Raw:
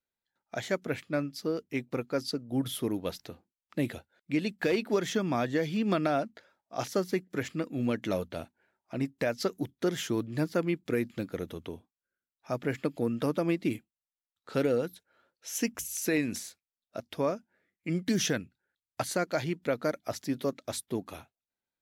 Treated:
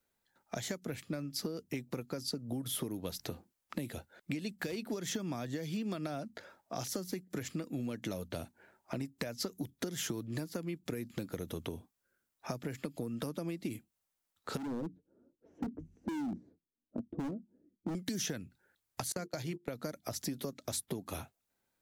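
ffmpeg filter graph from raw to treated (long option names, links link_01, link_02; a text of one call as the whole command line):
ffmpeg -i in.wav -filter_complex "[0:a]asettb=1/sr,asplit=3[link_01][link_02][link_03];[link_01]atrim=end=14.574[link_04];[link_02]atrim=start=14.57:end=17.95,asetpts=PTS-STARTPTS,afade=type=in:duration=0.004:curve=qsin,afade=type=out:start_time=3.376:duration=0.004:curve=qsin,lowpass=frequency=300:width_type=q:width=2.6,flanger=delay=3:depth=4.4:regen=51:speed=1.3:shape=triangular,volume=33dB,asoftclip=hard,volume=-33dB[link_05];[link_03]atrim=start=17.946[link_06];[link_04][link_05]acrossfade=duration=0.004:curve1=hsin:curve2=qsin[link_07];[link_07][link_06]acrossfade=duration=0.004:curve1=qsin:curve2=hsin,asettb=1/sr,asplit=3[link_08][link_09][link_10];[link_08]atrim=end=19.124[link_11];[link_09]atrim=start=19.12:end=19.68,asetpts=PTS-STARTPTS,afade=type=in:duration=0.004:curve=qsin,afade=type=out:start_time=0.556:duration=0.004:curve=qsin,bandreject=frequency=50:width_type=h:width=6,bandreject=frequency=100:width_type=h:width=6,bandreject=frequency=150:width_type=h:width=6,bandreject=frequency=200:width_type=h:width=6,bandreject=frequency=250:width_type=h:width=6,bandreject=frequency=300:width_type=h:width=6,bandreject=frequency=350:width_type=h:width=6,bandreject=frequency=400:width_type=h:width=6,bandreject=frequency=450:width_type=h:width=6,agate=range=-23dB:threshold=-37dB:ratio=16:release=100:detection=peak[link_12];[link_10]atrim=start=19.676[link_13];[link_11][link_12]acrossfade=duration=0.004:curve1=hsin:curve2=qsin[link_14];[link_14][link_13]acrossfade=duration=0.004:curve1=qsin:curve2=hsin,acompressor=threshold=-37dB:ratio=6,equalizer=frequency=3300:width_type=o:width=1.9:gain=-4.5,acrossover=split=200|3500[link_15][link_16][link_17];[link_15]acompressor=threshold=-54dB:ratio=4[link_18];[link_16]acompressor=threshold=-52dB:ratio=4[link_19];[link_17]acompressor=threshold=-47dB:ratio=4[link_20];[link_18][link_19][link_20]amix=inputs=3:normalize=0,volume=11.5dB" out.wav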